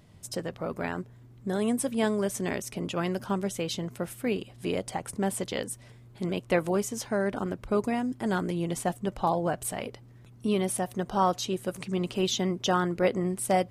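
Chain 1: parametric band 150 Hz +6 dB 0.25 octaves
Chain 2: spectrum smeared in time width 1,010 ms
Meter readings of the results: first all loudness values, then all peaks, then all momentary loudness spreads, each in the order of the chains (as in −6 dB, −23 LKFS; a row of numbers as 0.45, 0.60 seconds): −29.5, −35.5 LKFS; −11.5, −19.0 dBFS; 8, 7 LU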